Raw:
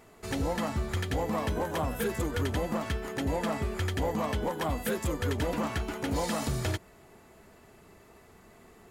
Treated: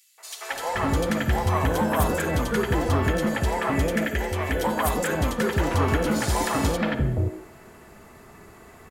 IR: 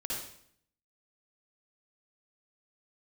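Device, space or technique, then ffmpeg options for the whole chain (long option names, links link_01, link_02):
filtered reverb send: -filter_complex "[0:a]asettb=1/sr,asplit=3[link_01][link_02][link_03];[link_01]atrim=end=3.544[link_04];[link_02]atrim=start=3.54:end=4.45,asetpts=PTS-STARTPTS,afade=type=in:duration=0.004:curve=qsin,afade=type=out:start_time=0.906:duration=0.004:curve=qsin,equalizer=frequency=125:width_type=o:width=1:gain=-12,equalizer=frequency=1000:width_type=o:width=1:gain=-10,equalizer=frequency=2000:width_type=o:width=1:gain=6,equalizer=frequency=4000:width_type=o:width=1:gain=-4[link_05];[link_03]atrim=start=4.446[link_06];[link_04][link_05]acrossfade=duration=0.004:curve1=hsin:curve2=qsin[link_07];[link_07][link_06]acrossfade=duration=0.004:curve1=qsin:curve2=hsin,asplit=2[link_08][link_09];[link_09]highpass=frequency=320:width=0.5412,highpass=frequency=320:width=1.3066,lowpass=3100[link_10];[1:a]atrim=start_sample=2205[link_11];[link_10][link_11]afir=irnorm=-1:irlink=0,volume=-8.5dB[link_12];[link_08][link_12]amix=inputs=2:normalize=0,acrossover=split=590|3300[link_13][link_14][link_15];[link_14]adelay=180[link_16];[link_13]adelay=520[link_17];[link_17][link_16][link_15]amix=inputs=3:normalize=0,volume=8dB"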